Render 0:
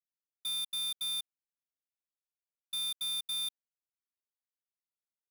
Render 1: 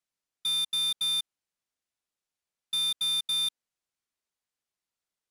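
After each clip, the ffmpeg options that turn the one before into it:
-af "lowpass=10k,volume=7.5dB"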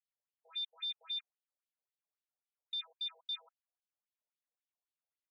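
-af "aemphasis=mode=reproduction:type=riaa,afftfilt=real='re*between(b*sr/1024,590*pow(4100/590,0.5+0.5*sin(2*PI*3.7*pts/sr))/1.41,590*pow(4100/590,0.5+0.5*sin(2*PI*3.7*pts/sr))*1.41)':imag='im*between(b*sr/1024,590*pow(4100/590,0.5+0.5*sin(2*PI*3.7*pts/sr))/1.41,590*pow(4100/590,0.5+0.5*sin(2*PI*3.7*pts/sr))*1.41)':win_size=1024:overlap=0.75,volume=-3dB"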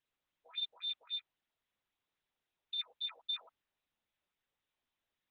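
-af "volume=3dB" -ar 48000 -c:a libopus -b:a 6k

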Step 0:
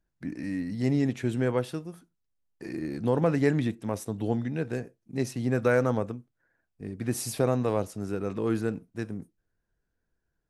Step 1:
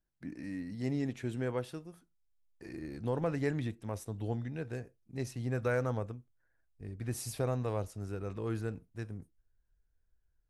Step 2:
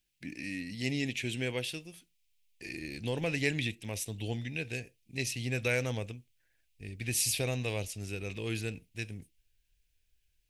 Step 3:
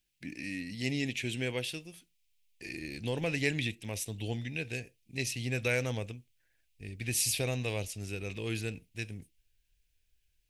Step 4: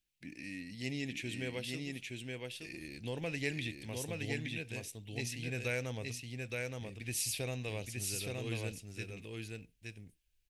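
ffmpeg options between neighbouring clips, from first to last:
-af "asubboost=boost=6:cutoff=81,volume=-7.5dB"
-af "highshelf=f=1.8k:t=q:w=3:g=12"
-af anull
-af "aecho=1:1:870:0.708,volume=-6dB"

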